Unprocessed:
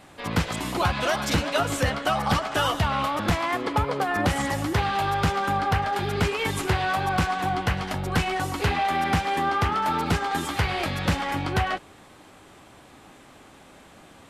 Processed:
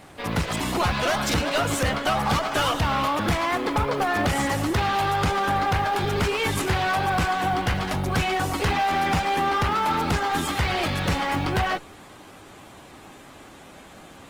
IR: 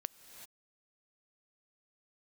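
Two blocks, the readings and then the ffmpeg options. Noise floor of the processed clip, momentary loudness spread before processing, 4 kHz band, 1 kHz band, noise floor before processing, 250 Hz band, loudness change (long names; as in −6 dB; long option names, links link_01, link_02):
−46 dBFS, 3 LU, +2.0 dB, +1.5 dB, −50 dBFS, +1.5 dB, +1.5 dB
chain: -af "aeval=exprs='(tanh(14.1*val(0)+0.3)-tanh(0.3))/14.1':channel_layout=same,acrusher=bits=8:mode=log:mix=0:aa=0.000001,volume=5dB" -ar 48000 -c:a libopus -b:a 20k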